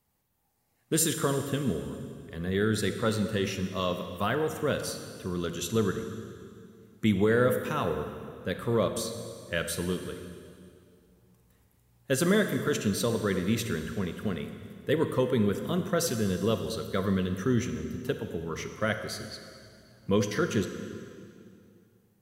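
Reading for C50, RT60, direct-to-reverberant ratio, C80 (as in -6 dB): 7.5 dB, 2.4 s, 7.0 dB, 8.5 dB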